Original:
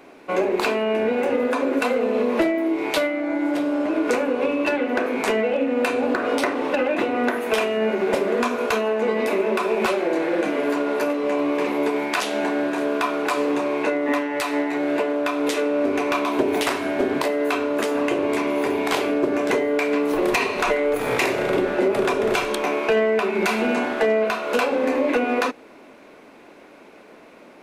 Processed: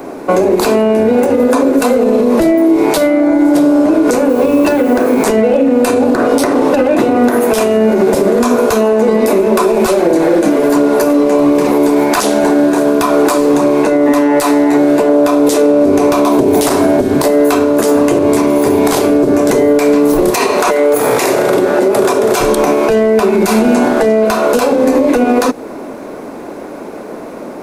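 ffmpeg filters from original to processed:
ffmpeg -i in.wav -filter_complex "[0:a]asettb=1/sr,asplit=3[link_01][link_02][link_03];[link_01]atrim=end=4.294[link_04];[link_02]atrim=start=4.29:end=5.25,asetpts=PTS-STARTPTS,afade=type=in:duration=0.004:curve=qsin,afade=type=out:start_time=0.956:duration=0.004:curve=qsin,acrusher=bits=7:mix=0:aa=0.5[link_05];[link_03]atrim=start=5.246[link_06];[link_04][link_05]acrossfade=duration=0.004:curve1=hsin:curve2=qsin[link_07];[link_07][link_06]acrossfade=duration=0.004:curve1=qsin:curve2=hsin,asettb=1/sr,asplit=3[link_08][link_09][link_10];[link_08]atrim=end=9.414[link_11];[link_09]atrim=start=9.41:end=13.78,asetpts=PTS-STARTPTS,afade=type=in:duration=0.004:curve=qsin,afade=type=out:start_time=4.366:duration=0.004:curve=qsin,aphaser=in_gain=1:out_gain=1:delay=3.7:decay=0.24:speed=1.4:type=triangular[link_12];[link_10]atrim=start=13.776[link_13];[link_11][link_12]acrossfade=duration=0.004:curve1=hsin:curve2=qsin[link_14];[link_14][link_13]acrossfade=duration=0.004:curve1=qsin:curve2=hsin,asettb=1/sr,asplit=3[link_15][link_16][link_17];[link_15]atrim=end=15.094[link_18];[link_16]atrim=start=15.09:end=17.02,asetpts=PTS-STARTPTS,afade=type=in:duration=0.004:curve=qsin,afade=type=out:start_time=1.926:duration=0.004:curve=qsin,equalizer=frequency=590:width=0.42:gain=9.5[link_19];[link_17]atrim=start=17.016[link_20];[link_18][link_19]acrossfade=duration=0.004:curve1=hsin:curve2=qsin[link_21];[link_21][link_20]acrossfade=duration=0.004:curve1=qsin:curve2=hsin,asettb=1/sr,asplit=3[link_22][link_23][link_24];[link_22]atrim=end=20.304[link_25];[link_23]atrim=start=20.3:end=22.4,asetpts=PTS-STARTPTS,afade=type=in:duration=0.004:curve=qsin,afade=type=out:start_time=2.096:duration=0.004:curve=qsin,highpass=frequency=470:poles=1[link_26];[link_24]atrim=start=22.396[link_27];[link_25][link_26]acrossfade=duration=0.004:curve1=hsin:curve2=qsin[link_28];[link_28][link_27]acrossfade=duration=0.004:curve1=qsin:curve2=hsin,equalizer=frequency=2700:width_type=o:width=1.7:gain=-14.5,acrossover=split=170|3000[link_29][link_30][link_31];[link_30]acompressor=threshold=-29dB:ratio=6[link_32];[link_29][link_32][link_31]amix=inputs=3:normalize=0,alimiter=level_in=23dB:limit=-1dB:release=50:level=0:latency=1,volume=-1dB" out.wav

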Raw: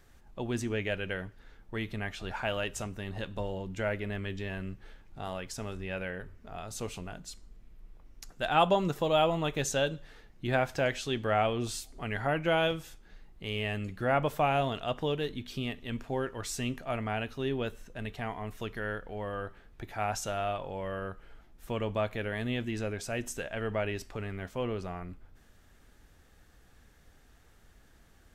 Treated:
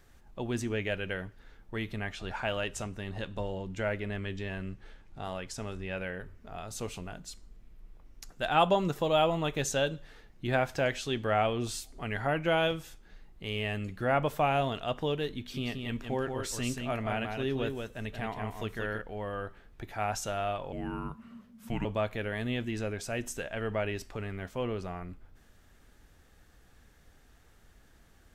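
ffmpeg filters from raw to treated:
ffmpeg -i in.wav -filter_complex "[0:a]asettb=1/sr,asplit=3[link_01][link_02][link_03];[link_01]atrim=end=2.014[link_04];[link_02]atrim=start=2.01:end=6.02,asetpts=PTS-STARTPTS,afade=type=in:duration=0.004:curve=qsin,afade=type=out:start_time=4.006:duration=0.004:curve=qsin,lowpass=11000[link_05];[link_03]atrim=start=6.016[link_06];[link_04][link_05]acrossfade=duration=0.004:curve1=hsin:curve2=qsin[link_07];[link_07][link_06]acrossfade=duration=0.004:curve1=qsin:curve2=hsin,asettb=1/sr,asplit=3[link_08][link_09][link_10];[link_08]atrim=end=15.364[link_11];[link_09]atrim=start=15.36:end=19.02,asetpts=PTS-STARTPTS,afade=type=in:duration=0.004:curve=qsin,afade=type=out:start_time=3.656:duration=0.004:curve=qsin,aecho=1:1:179:0.562,atrim=end_sample=161406[link_12];[link_10]atrim=start=19.016[link_13];[link_11][link_12]acrossfade=duration=0.004:curve1=hsin:curve2=qsin[link_14];[link_14][link_13]acrossfade=duration=0.004:curve1=qsin:curve2=hsin,asettb=1/sr,asplit=3[link_15][link_16][link_17];[link_15]atrim=end=20.724[link_18];[link_16]atrim=start=20.72:end=21.85,asetpts=PTS-STARTPTS,afade=type=in:duration=0.004:curve=qsin,afade=type=out:start_time=1.126:duration=0.004:curve=qsin,afreqshift=-250[link_19];[link_17]atrim=start=21.846[link_20];[link_18][link_19]acrossfade=duration=0.004:curve1=hsin:curve2=qsin[link_21];[link_21][link_20]acrossfade=duration=0.004:curve1=qsin:curve2=hsin" out.wav

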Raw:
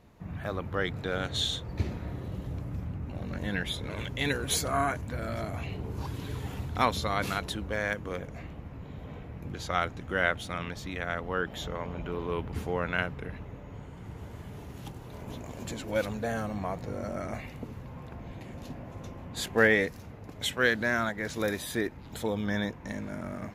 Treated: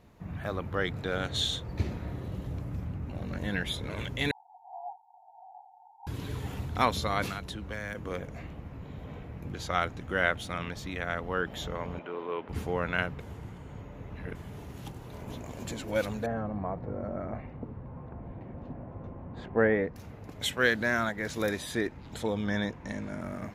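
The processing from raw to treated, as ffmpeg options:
ffmpeg -i in.wav -filter_complex "[0:a]asettb=1/sr,asplit=3[link_01][link_02][link_03];[link_01]atrim=end=4.314[link_04];[link_02]atrim=start=4.31:end=6.07,asetpts=PTS-STARTPTS,afade=type=in:duration=0.004:curve=qsin,afade=type=out:start_time=1.756:duration=0.004:curve=qsin,asuperpass=centerf=820:order=12:qfactor=4[link_05];[link_03]atrim=start=6.066[link_06];[link_04][link_05]acrossfade=duration=0.004:curve1=hsin:curve2=qsin[link_07];[link_07][link_06]acrossfade=duration=0.004:curve1=qsin:curve2=hsin,asettb=1/sr,asplit=3[link_08][link_09][link_10];[link_08]atrim=end=7.274[link_11];[link_09]atrim=start=7.27:end=7.95,asetpts=PTS-STARTPTS,afade=type=in:duration=0.004:curve=qsin,afade=type=out:start_time=0.676:duration=0.004:curve=qsin,acrossover=split=250|930|7300[link_12][link_13][link_14][link_15];[link_12]acompressor=threshold=-38dB:ratio=3[link_16];[link_13]acompressor=threshold=-46dB:ratio=3[link_17];[link_14]acompressor=threshold=-39dB:ratio=3[link_18];[link_15]acompressor=threshold=-59dB:ratio=3[link_19];[link_16][link_17][link_18][link_19]amix=inputs=4:normalize=0[link_20];[link_10]atrim=start=7.946[link_21];[link_11][link_20]acrossfade=duration=0.004:curve1=hsin:curve2=qsin[link_22];[link_22][link_21]acrossfade=duration=0.004:curve1=qsin:curve2=hsin,asettb=1/sr,asplit=3[link_23][link_24][link_25];[link_23]atrim=end=11.994[link_26];[link_24]atrim=start=11.99:end=12.49,asetpts=PTS-STARTPTS,afade=type=in:duration=0.004:curve=qsin,afade=type=out:start_time=0.496:duration=0.004:curve=qsin,highpass=350,lowpass=3000[link_27];[link_25]atrim=start=12.486[link_28];[link_26][link_27]acrossfade=duration=0.004:curve1=hsin:curve2=qsin[link_29];[link_29][link_28]acrossfade=duration=0.004:curve1=qsin:curve2=hsin,asettb=1/sr,asplit=3[link_30][link_31][link_32];[link_30]atrim=end=16.264[link_33];[link_31]atrim=start=16.26:end=19.96,asetpts=PTS-STARTPTS,afade=type=in:duration=0.004:curve=qsin,afade=type=out:start_time=3.696:duration=0.004:curve=qsin,lowpass=1200[link_34];[link_32]atrim=start=19.956[link_35];[link_33][link_34]acrossfade=duration=0.004:curve1=hsin:curve2=qsin[link_36];[link_36][link_35]acrossfade=duration=0.004:curve1=qsin:curve2=hsin,asettb=1/sr,asplit=3[link_37][link_38][link_39];[link_37]atrim=end=21.494[link_40];[link_38]atrim=start=21.49:end=23.2,asetpts=PTS-STARTPTS,afade=type=in:duration=0.004:curve=qsin,afade=type=out:start_time=1.706:duration=0.004:curve=qsin,lowpass=9500[link_41];[link_39]atrim=start=23.196[link_42];[link_40][link_41]acrossfade=duration=0.004:curve1=hsin:curve2=qsin[link_43];[link_43][link_42]acrossfade=duration=0.004:curve1=qsin:curve2=hsin,asplit=3[link_44][link_45][link_46];[link_44]atrim=end=13.202[link_47];[link_45]atrim=start=13.198:end=14.352,asetpts=PTS-STARTPTS,areverse[link_48];[link_46]atrim=start=14.348[link_49];[link_47][link_48]acrossfade=duration=0.004:curve1=hsin:curve2=hsin[link_50];[link_50][link_49]acrossfade=duration=0.004:curve1=hsin:curve2=hsin" out.wav

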